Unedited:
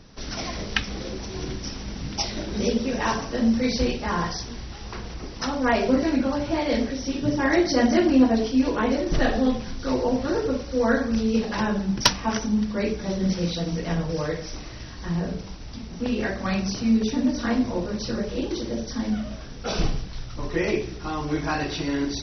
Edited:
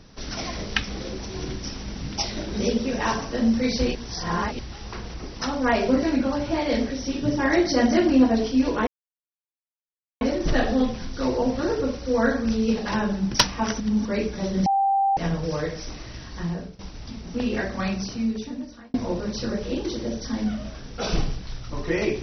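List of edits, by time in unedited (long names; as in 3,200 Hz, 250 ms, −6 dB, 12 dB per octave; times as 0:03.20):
0:03.95–0:04.59: reverse
0:08.87: splice in silence 1.34 s
0:12.46–0:12.71: reverse
0:13.32–0:13.83: beep over 786 Hz −17.5 dBFS
0:15.05–0:15.45: fade out, to −17 dB
0:16.37–0:17.60: fade out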